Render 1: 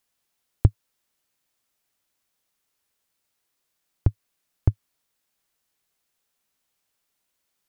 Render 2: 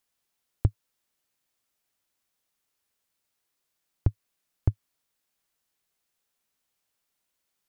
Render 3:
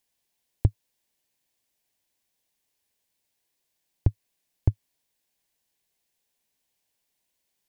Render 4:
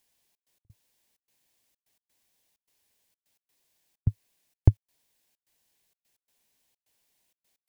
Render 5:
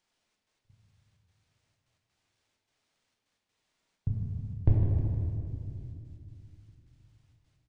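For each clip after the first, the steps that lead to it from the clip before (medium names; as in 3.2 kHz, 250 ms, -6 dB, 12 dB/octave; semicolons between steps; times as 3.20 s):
peak limiter -7 dBFS, peak gain reduction 3.5 dB; trim -3 dB
peaking EQ 1.3 kHz -13.5 dB 0.31 oct; trim +2 dB
trance gate "xxx.x.xxxx.x" 129 bpm -60 dB; trim +4.5 dB
feedback delay 156 ms, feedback 57%, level -10 dB; reverberation RT60 2.5 s, pre-delay 6 ms, DRR -3 dB; decimation joined by straight lines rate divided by 3×; trim -7 dB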